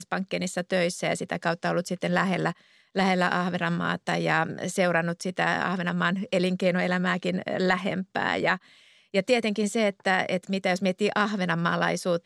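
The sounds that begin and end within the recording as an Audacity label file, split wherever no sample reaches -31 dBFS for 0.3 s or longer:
2.960000	8.560000	sound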